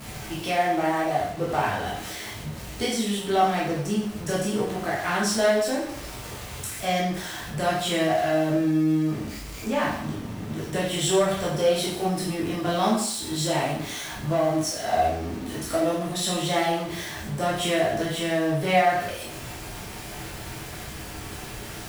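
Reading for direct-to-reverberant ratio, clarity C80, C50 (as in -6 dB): -6.5 dB, 7.0 dB, 3.0 dB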